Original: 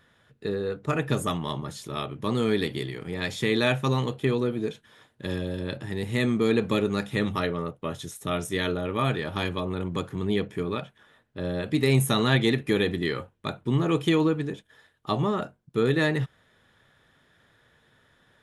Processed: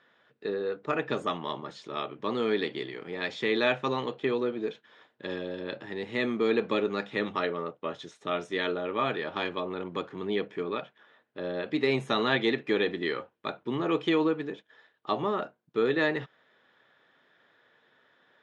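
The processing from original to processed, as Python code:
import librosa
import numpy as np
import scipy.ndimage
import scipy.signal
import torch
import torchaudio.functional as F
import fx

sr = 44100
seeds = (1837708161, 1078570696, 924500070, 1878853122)

y = fx.bandpass_edges(x, sr, low_hz=320.0, high_hz=6100.0)
y = fx.air_absorb(y, sr, metres=120.0)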